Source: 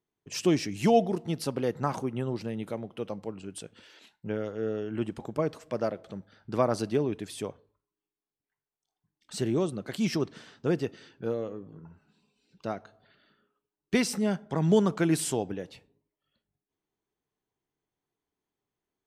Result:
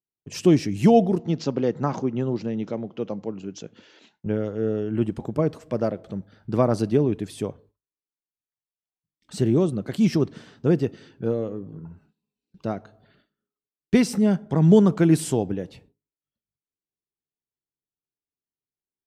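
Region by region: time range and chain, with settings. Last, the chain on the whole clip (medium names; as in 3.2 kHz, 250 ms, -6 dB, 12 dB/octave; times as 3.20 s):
1.19–4.26 s: high-pass 150 Hz + careless resampling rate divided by 3×, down none, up filtered
whole clip: gate with hold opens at -54 dBFS; bass shelf 480 Hz +10.5 dB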